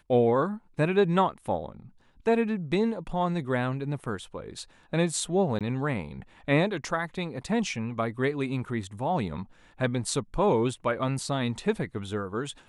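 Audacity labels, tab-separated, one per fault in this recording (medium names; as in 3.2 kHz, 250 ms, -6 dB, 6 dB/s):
5.590000	5.610000	dropout 17 ms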